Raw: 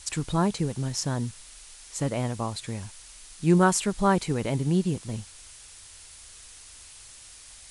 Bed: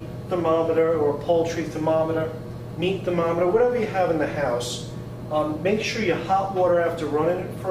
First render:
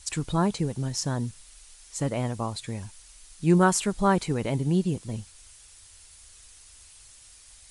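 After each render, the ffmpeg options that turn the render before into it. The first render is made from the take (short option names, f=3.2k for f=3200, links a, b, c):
-af "afftdn=nr=6:nf=-48"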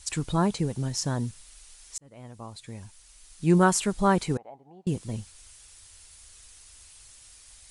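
-filter_complex "[0:a]asettb=1/sr,asplit=3[a][b][c];[a]atrim=end=4.374[d];[b]atrim=start=4.37:end=4.87,asetpts=PTS-STARTPTS,afade=t=in:d=0.004:c=qsin,afade=t=out:st=0.496:d=0.004:c=qsin,bandpass=f=770:t=q:w=9.1[e];[c]atrim=start=4.866[f];[d][e]acrossfade=d=0.004:c1=hsin:c2=qsin[g];[g][f]acrossfade=d=0.004:c1=qsin:c2=hsin,asplit=2[h][i];[h]atrim=end=1.98,asetpts=PTS-STARTPTS,afade=t=out:st=1.976:d=0.004:c=hsin[j];[i]atrim=start=1.98,asetpts=PTS-STARTPTS,afade=t=in:d=1.62[k];[j][k]concat=n=2:v=0:a=1"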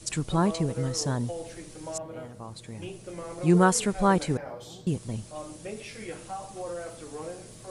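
-filter_complex "[1:a]volume=-16.5dB[a];[0:a][a]amix=inputs=2:normalize=0"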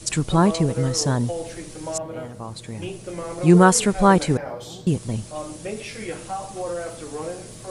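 -af "volume=7dB,alimiter=limit=-1dB:level=0:latency=1"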